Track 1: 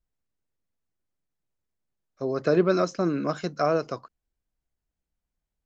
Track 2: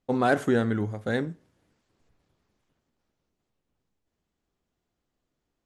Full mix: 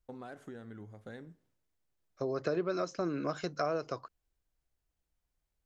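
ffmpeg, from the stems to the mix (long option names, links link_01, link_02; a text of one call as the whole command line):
ffmpeg -i stem1.wav -i stem2.wav -filter_complex "[0:a]equalizer=frequency=210:width_type=o:width=0.52:gain=-7.5,volume=1dB[link_01];[1:a]acompressor=threshold=-28dB:ratio=12,agate=range=-33dB:threshold=-59dB:ratio=3:detection=peak,volume=-14.5dB[link_02];[link_01][link_02]amix=inputs=2:normalize=0,acompressor=threshold=-33dB:ratio=3" out.wav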